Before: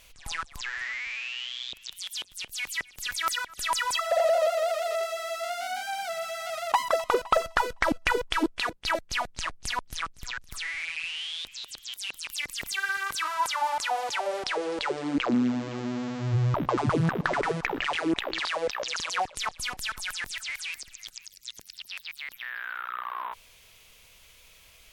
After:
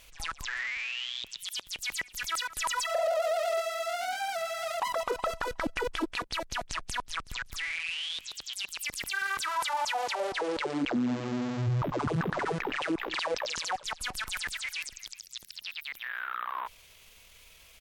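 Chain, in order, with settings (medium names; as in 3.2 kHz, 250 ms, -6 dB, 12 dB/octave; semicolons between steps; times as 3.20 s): peak limiter -22.5 dBFS, peak gain reduction 9.5 dB; tempo 1.4×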